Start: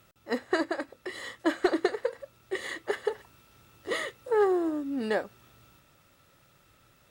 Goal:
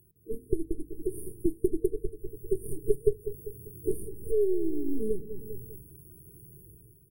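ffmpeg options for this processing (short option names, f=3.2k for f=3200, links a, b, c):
-filter_complex "[0:a]dynaudnorm=f=150:g=7:m=12.5dB,aeval=exprs='0.708*(cos(1*acos(clip(val(0)/0.708,-1,1)))-cos(1*PI/2))+0.2*(cos(6*acos(clip(val(0)/0.708,-1,1)))-cos(6*PI/2))':c=same,equalizer=f=250:t=o:w=0.4:g=-14,bandreject=f=50:t=h:w=6,bandreject=f=100:t=h:w=6,bandreject=f=150:t=h:w=6,bandreject=f=200:t=h:w=6,bandreject=f=250:t=h:w=6,asplit=2[a][b];[b]adelay=198,lowpass=f=2k:p=1,volume=-15dB,asplit=2[c][d];[d]adelay=198,lowpass=f=2k:p=1,volume=0.34,asplit=2[e][f];[f]adelay=198,lowpass=f=2k:p=1,volume=0.34[g];[c][e][g]amix=inputs=3:normalize=0[h];[a][h]amix=inputs=2:normalize=0,acompressor=threshold=-25dB:ratio=6,asettb=1/sr,asplit=3[i][j][k];[i]atrim=end=2.704[l];[j]atrim=start=2.7:end=3.11,asetpts=PTS-STARTPTS,afade=t=in:d=0.004:c=qsin,afade=t=out:st=0.406:d=0.004:c=qsin,aecho=1:1:7.2:0.76,atrim=end_sample=18081[m];[k]atrim=start=3.106[n];[l][m]acrossfade=d=0.004:c1=hsin:c2=qsin[o];[o][n]acrossfade=d=0.004:c1=qsin:c2=hsin,afftfilt=real='re*(1-between(b*sr/4096,460,9000))':imag='im*(1-between(b*sr/4096,460,9000))':win_size=4096:overlap=0.75,volume=3.5dB"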